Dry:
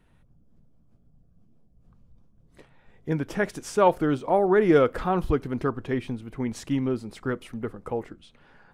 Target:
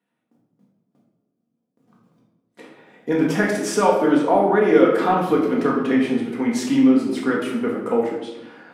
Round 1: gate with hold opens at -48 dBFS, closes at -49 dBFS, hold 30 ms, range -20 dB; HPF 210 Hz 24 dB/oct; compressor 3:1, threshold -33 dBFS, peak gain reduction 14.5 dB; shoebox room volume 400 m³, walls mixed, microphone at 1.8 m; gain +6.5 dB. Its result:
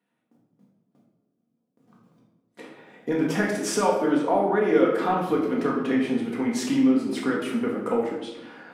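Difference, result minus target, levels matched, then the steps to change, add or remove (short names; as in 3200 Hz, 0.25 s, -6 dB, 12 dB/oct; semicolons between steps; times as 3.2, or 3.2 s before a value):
compressor: peak gain reduction +5.5 dB
change: compressor 3:1, threshold -25 dBFS, peak gain reduction 9 dB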